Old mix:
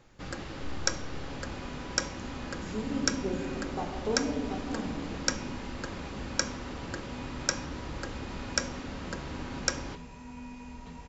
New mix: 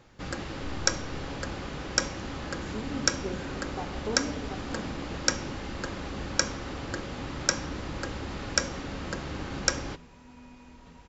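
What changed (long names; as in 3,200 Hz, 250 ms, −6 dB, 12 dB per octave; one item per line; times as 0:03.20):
speech: send −6.0 dB
first sound +3.5 dB
second sound −7.0 dB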